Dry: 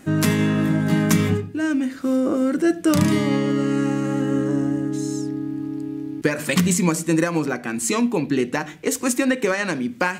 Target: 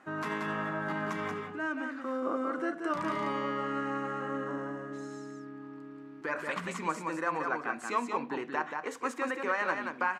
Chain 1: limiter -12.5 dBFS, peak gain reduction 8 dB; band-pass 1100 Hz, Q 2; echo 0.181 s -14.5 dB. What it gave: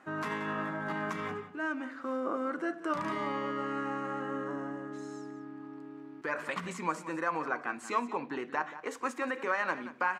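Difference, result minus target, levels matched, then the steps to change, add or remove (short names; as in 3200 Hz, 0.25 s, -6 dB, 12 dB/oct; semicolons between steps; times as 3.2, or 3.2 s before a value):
echo-to-direct -9.5 dB
change: echo 0.181 s -5 dB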